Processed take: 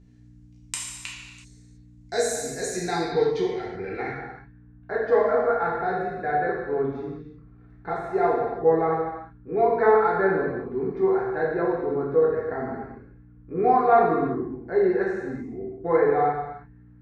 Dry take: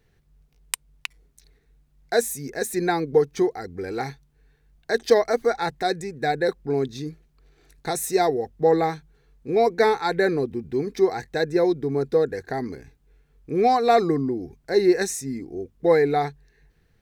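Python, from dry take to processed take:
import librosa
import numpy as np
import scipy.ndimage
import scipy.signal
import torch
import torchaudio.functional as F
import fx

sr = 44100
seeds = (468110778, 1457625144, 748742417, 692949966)

y = fx.add_hum(x, sr, base_hz=60, snr_db=20)
y = fx.rev_gated(y, sr, seeds[0], gate_ms=400, shape='falling', drr_db=-5.5)
y = fx.filter_sweep_lowpass(y, sr, from_hz=7000.0, to_hz=1300.0, start_s=2.67, end_s=4.66, q=2.5)
y = y * librosa.db_to_amplitude(-9.0)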